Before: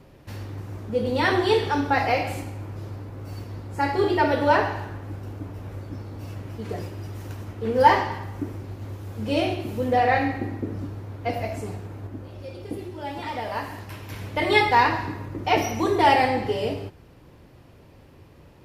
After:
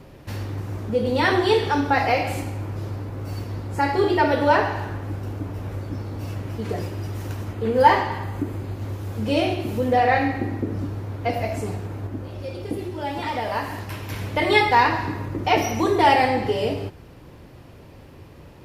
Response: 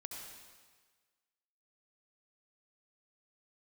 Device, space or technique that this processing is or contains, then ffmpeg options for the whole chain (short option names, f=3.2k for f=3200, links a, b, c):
parallel compression: -filter_complex "[0:a]asplit=2[a][b];[b]acompressor=threshold=-30dB:ratio=6,volume=-1dB[c];[a][c]amix=inputs=2:normalize=0,asettb=1/sr,asplit=3[d][e][f];[d]atrim=end=7.534[g];[e]atrim=start=7.53:end=8.76,asetpts=PTS-STARTPTS,afade=t=in:d=0.004:c=qsin,afade=t=out:st=1.226:d=0.004:c=qsin,bandreject=f=5.6k:w=6.7[h];[f]atrim=start=8.756[i];[g][h]acrossfade=d=0.004:c1=hsin:c2=qsin[j];[j][i]acrossfade=d=0.004:c1=qsin:c2=hsin"